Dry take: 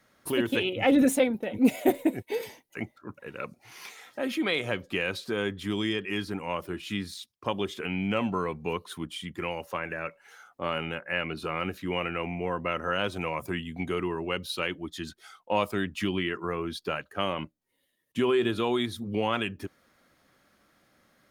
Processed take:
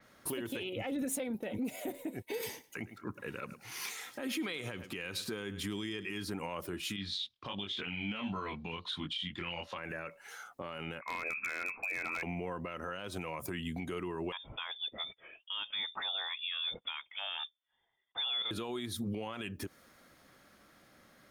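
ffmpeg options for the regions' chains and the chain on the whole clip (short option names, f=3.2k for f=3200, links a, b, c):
-filter_complex "[0:a]asettb=1/sr,asplit=3[a][b][c];[a]atrim=end=2.334[d];[b]atrim=start=2.33:end=6.23,asetpts=PTS-STARTPTS,afade=t=in:d=0.004:c=qsin,afade=t=out:st=3.896:d=0.004:c=qsin,equalizer=f=620:t=o:w=0.69:g=-5.5,aecho=1:1:104|208:0.1|0.024,atrim=end_sample=171990[e];[c]atrim=start=6.226[f];[d][e]acrossfade=d=0.004:c1=hsin:c2=qsin[g];[g][f]acrossfade=d=0.004:c1=qsin:c2=hsin,asettb=1/sr,asplit=3[h][i][j];[h]atrim=end=6.964[k];[i]atrim=start=6.96:end=9.78,asetpts=PTS-STARTPTS,afade=t=in:d=0.004:c=qsin,afade=t=out:st=2.816:d=0.004:c=qsin,lowpass=f=3.6k:t=q:w=3.6,equalizer=f=420:w=1.8:g=-7,flanger=delay=20:depth=3.9:speed=1.4[l];[j]atrim=start=9.776[m];[k][l]acrossfade=d=0.004:c1=hsin:c2=qsin[n];[n][m]acrossfade=d=0.004:c1=qsin:c2=hsin,asettb=1/sr,asplit=3[o][p][q];[o]atrim=end=11.014[r];[p]atrim=start=11.01:end=12.23,asetpts=PTS-STARTPTS,afade=t=in:d=0.004:c=qsin,afade=t=out:st=1.216:d=0.004:c=qsin,lowpass=f=2.3k:t=q:w=0.5098,lowpass=f=2.3k:t=q:w=0.6013,lowpass=f=2.3k:t=q:w=0.9,lowpass=f=2.3k:t=q:w=2.563,afreqshift=-2700,acompressor=threshold=-35dB:ratio=16:attack=3.2:release=140:knee=1:detection=peak,aeval=exprs='0.0251*(abs(mod(val(0)/0.0251+3,4)-2)-1)':c=same[s];[q]atrim=start=12.226[t];[r][s]acrossfade=d=0.004:c1=hsin:c2=qsin[u];[u][t]acrossfade=d=0.004:c1=qsin:c2=hsin,asettb=1/sr,asplit=3[v][w][x];[v]atrim=end=14.324[y];[w]atrim=start=14.32:end=18.51,asetpts=PTS-STARTPTS,afade=t=in:d=0.004:c=qsin,afade=t=out:st=4.186:d=0.004:c=qsin,highpass=f=230:w=0.5412,highpass=f=230:w=1.3066,equalizer=f=880:w=0.37:g=-7.5,lowpass=f=3.2k:t=q:w=0.5098,lowpass=f=3.2k:t=q:w=0.6013,lowpass=f=3.2k:t=q:w=0.9,lowpass=f=3.2k:t=q:w=2.563,afreqshift=-3800[z];[x]atrim=start=18.506[aa];[y][z]acrossfade=d=0.004:c1=hsin:c2=qsin[ab];[ab][aa]acrossfade=d=0.004:c1=qsin:c2=hsin,acompressor=threshold=-34dB:ratio=4,alimiter=level_in=8dB:limit=-24dB:level=0:latency=1:release=70,volume=-8dB,adynamicequalizer=threshold=0.00126:dfrequency=5300:dqfactor=0.7:tfrequency=5300:tqfactor=0.7:attack=5:release=100:ratio=0.375:range=3:mode=boostabove:tftype=highshelf,volume=3dB"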